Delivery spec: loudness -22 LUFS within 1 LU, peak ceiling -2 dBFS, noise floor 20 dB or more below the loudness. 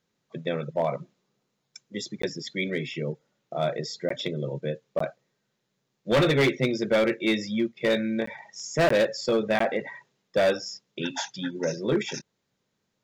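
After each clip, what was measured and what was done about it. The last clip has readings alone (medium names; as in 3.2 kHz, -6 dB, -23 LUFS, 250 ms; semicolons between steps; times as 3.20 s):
clipped samples 1.2%; clipping level -17.0 dBFS; dropouts 6; longest dropout 14 ms; loudness -27.5 LUFS; peak level -17.0 dBFS; loudness target -22.0 LUFS
-> clip repair -17 dBFS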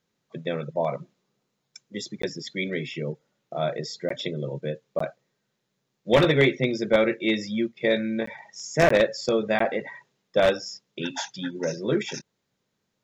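clipped samples 0.0%; dropouts 6; longest dropout 14 ms
-> interpolate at 2.22/4.09/4.99/8.26/8.89/9.59 s, 14 ms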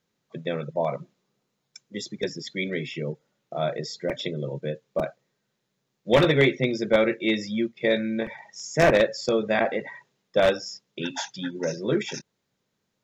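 dropouts 0; loudness -26.0 LUFS; peak level -7.5 dBFS; loudness target -22.0 LUFS
-> trim +4 dB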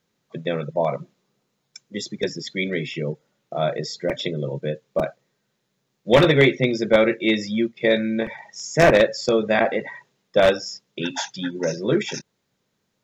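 loudness -22.0 LUFS; peak level -3.5 dBFS; noise floor -74 dBFS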